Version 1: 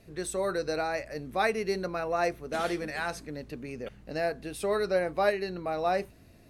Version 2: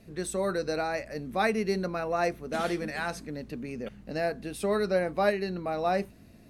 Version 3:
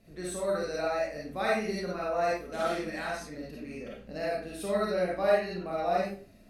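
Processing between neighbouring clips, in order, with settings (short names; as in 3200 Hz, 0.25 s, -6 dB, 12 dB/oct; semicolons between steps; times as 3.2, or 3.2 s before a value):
bell 210 Hz +8 dB 0.56 oct
reverb RT60 0.40 s, pre-delay 10 ms, DRR -5.5 dB; gain -8 dB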